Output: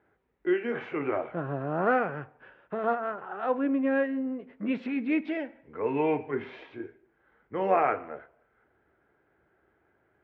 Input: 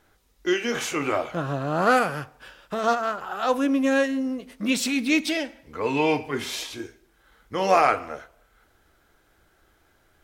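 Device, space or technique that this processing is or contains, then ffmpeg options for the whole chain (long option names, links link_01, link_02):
bass cabinet: -af "highpass=frequency=68:width=0.5412,highpass=frequency=68:width=1.3066,equalizer=frequency=82:width_type=q:width=4:gain=-8,equalizer=frequency=400:width_type=q:width=4:gain=5,equalizer=frequency=1200:width_type=q:width=4:gain=-4,lowpass=frequency=2100:width=0.5412,lowpass=frequency=2100:width=1.3066,volume=-5dB"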